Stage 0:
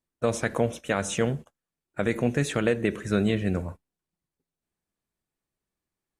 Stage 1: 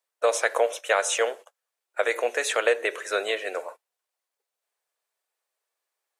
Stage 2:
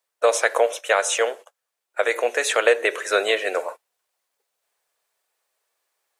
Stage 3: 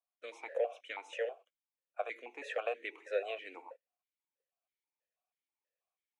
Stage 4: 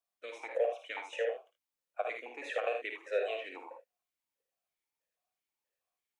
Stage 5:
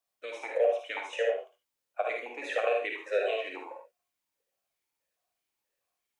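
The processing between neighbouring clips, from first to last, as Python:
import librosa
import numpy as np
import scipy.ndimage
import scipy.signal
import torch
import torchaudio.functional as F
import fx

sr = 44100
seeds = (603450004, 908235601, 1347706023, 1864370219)

y1 = scipy.signal.sosfilt(scipy.signal.butter(6, 480.0, 'highpass', fs=sr, output='sos'), x)
y1 = y1 * 10.0 ** (6.0 / 20.0)
y2 = fx.rider(y1, sr, range_db=10, speed_s=2.0)
y2 = y2 * 10.0 ** (5.0 / 20.0)
y3 = fx.vowel_held(y2, sr, hz=6.2)
y3 = y3 * 10.0 ** (-7.0 / 20.0)
y4 = fx.room_early_taps(y3, sr, ms=(54, 78), db=(-6.5, -8.0))
y4 = y4 * 10.0 ** (1.5 / 20.0)
y5 = fx.rev_gated(y4, sr, seeds[0], gate_ms=90, shape='rising', drr_db=5.0)
y5 = y5 * 10.0 ** (4.0 / 20.0)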